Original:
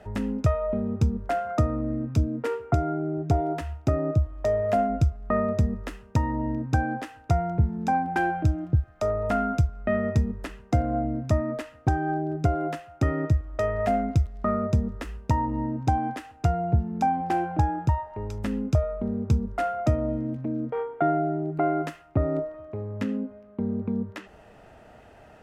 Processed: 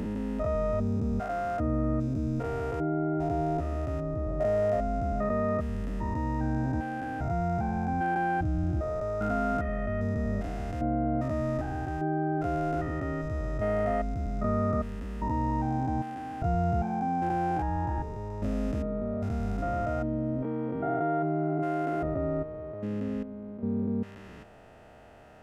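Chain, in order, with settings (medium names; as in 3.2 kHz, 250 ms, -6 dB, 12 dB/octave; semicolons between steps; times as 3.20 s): spectrogram pixelated in time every 400 ms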